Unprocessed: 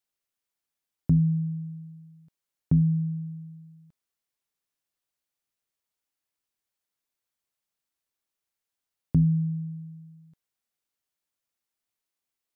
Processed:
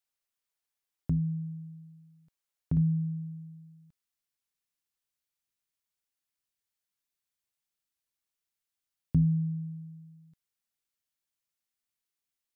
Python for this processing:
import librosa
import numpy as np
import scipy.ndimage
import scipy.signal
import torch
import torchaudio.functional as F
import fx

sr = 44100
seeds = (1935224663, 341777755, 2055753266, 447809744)

y = fx.peak_eq(x, sr, hz=fx.steps((0.0, 200.0), (2.77, 550.0)), db=-6.5, octaves=2.5)
y = F.gain(torch.from_numpy(y), -1.5).numpy()